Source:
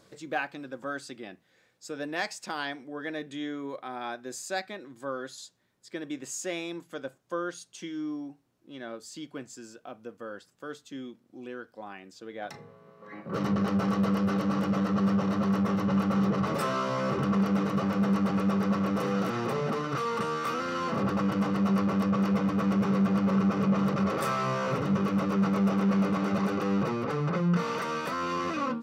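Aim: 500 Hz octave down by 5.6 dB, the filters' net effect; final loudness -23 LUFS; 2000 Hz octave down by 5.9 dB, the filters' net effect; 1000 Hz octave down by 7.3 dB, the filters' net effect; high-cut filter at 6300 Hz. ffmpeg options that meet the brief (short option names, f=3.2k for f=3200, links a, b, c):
-af "lowpass=6.3k,equalizer=f=500:t=o:g=-5,equalizer=f=1k:t=o:g=-6.5,equalizer=f=2k:t=o:g=-5,volume=7.5dB"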